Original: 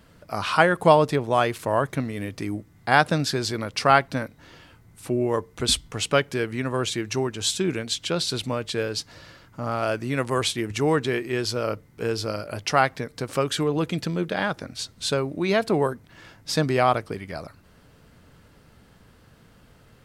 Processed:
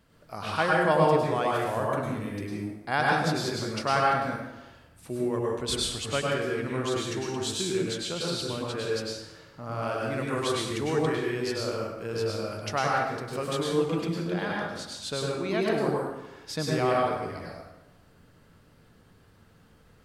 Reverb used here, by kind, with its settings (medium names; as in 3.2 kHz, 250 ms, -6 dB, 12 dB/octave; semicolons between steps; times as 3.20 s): plate-style reverb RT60 1 s, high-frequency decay 0.7×, pre-delay 90 ms, DRR -3.5 dB; trim -9.5 dB